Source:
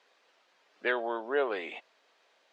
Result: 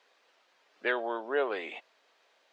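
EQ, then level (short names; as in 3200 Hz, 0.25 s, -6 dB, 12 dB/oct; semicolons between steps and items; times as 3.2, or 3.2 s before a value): low shelf 110 Hz -8.5 dB; 0.0 dB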